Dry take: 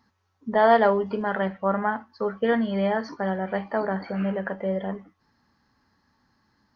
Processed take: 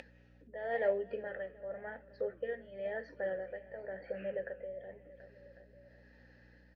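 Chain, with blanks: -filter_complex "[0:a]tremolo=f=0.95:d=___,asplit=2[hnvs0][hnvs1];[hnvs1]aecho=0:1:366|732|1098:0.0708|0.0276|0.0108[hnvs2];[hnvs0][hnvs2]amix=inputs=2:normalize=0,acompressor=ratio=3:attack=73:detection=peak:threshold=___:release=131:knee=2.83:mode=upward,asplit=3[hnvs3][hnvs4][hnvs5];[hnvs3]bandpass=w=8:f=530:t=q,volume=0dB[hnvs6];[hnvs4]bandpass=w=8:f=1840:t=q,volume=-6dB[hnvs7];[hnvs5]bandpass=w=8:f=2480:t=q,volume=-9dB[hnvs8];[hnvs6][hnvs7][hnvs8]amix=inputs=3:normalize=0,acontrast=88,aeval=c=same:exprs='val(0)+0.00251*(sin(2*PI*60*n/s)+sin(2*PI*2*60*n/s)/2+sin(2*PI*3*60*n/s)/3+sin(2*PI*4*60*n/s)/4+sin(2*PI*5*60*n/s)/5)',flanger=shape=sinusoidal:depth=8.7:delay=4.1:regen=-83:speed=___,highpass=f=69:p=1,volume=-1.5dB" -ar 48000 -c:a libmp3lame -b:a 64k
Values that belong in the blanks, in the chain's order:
0.77, -41dB, 0.98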